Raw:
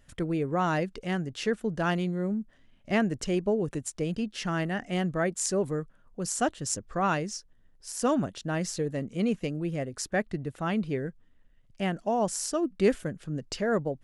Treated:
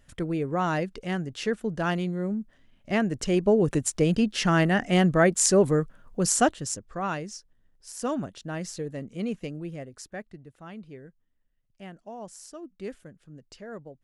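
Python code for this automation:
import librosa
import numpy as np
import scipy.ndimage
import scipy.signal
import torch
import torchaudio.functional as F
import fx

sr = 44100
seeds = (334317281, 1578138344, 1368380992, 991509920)

y = fx.gain(x, sr, db=fx.line((3.02, 0.5), (3.71, 8.0), (6.34, 8.0), (6.82, -3.5), (9.55, -3.5), (10.45, -13.5)))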